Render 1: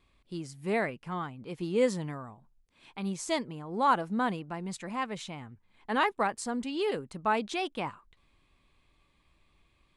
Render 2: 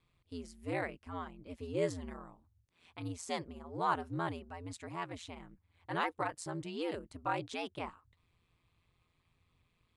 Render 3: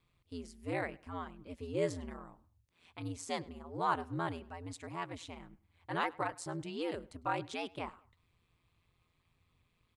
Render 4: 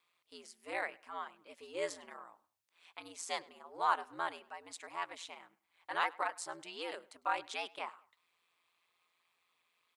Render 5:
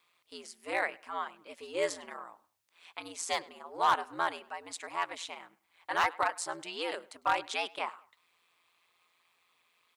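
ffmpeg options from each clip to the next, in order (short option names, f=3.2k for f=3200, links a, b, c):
-af "aeval=exprs='val(0)*sin(2*PI*86*n/s)':c=same,volume=-4.5dB"
-filter_complex "[0:a]asplit=2[a][b];[b]adelay=103,lowpass=f=5k:p=1,volume=-23dB,asplit=2[c][d];[d]adelay=103,lowpass=f=5k:p=1,volume=0.37[e];[a][c][e]amix=inputs=3:normalize=0"
-af "highpass=720,volume=2.5dB"
-af "asoftclip=type=hard:threshold=-25dB,volume=6.5dB"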